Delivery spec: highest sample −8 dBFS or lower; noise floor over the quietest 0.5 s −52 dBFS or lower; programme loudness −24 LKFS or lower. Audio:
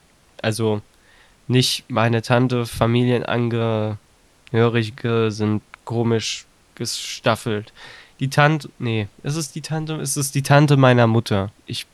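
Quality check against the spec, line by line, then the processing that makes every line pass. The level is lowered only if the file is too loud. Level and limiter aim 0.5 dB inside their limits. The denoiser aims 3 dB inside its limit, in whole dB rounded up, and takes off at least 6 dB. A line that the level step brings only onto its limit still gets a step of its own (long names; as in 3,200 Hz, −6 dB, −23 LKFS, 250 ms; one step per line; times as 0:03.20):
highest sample −2.0 dBFS: out of spec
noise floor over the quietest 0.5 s −54 dBFS: in spec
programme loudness −20.0 LKFS: out of spec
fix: level −4.5 dB
brickwall limiter −8.5 dBFS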